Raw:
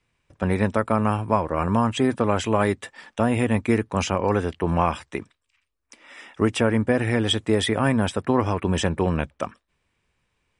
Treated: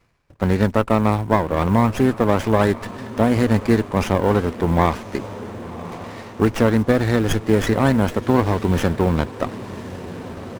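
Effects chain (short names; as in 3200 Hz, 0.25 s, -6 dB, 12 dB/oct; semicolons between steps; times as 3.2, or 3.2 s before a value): diffused feedback echo 1.092 s, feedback 60%, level -16 dB; harmoniser -12 st -17 dB; reverse; upward compressor, threshold -30 dBFS; reverse; short-mantissa float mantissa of 4-bit; running maximum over 9 samples; gain +3.5 dB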